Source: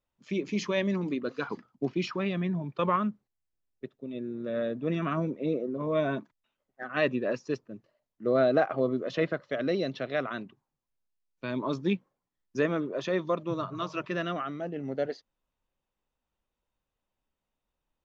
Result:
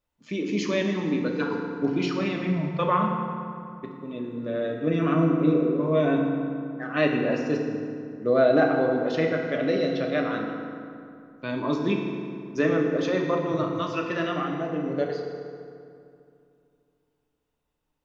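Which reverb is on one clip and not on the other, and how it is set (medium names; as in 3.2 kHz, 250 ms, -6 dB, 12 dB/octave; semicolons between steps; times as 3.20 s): FDN reverb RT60 2.5 s, low-frequency decay 1.2×, high-frequency decay 0.6×, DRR 0.5 dB; trim +2 dB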